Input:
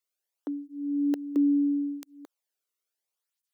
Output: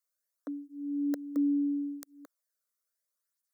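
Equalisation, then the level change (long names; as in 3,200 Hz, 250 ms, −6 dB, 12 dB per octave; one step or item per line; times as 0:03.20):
low-shelf EQ 380 Hz −7.5 dB
phaser with its sweep stopped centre 560 Hz, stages 8
+2.0 dB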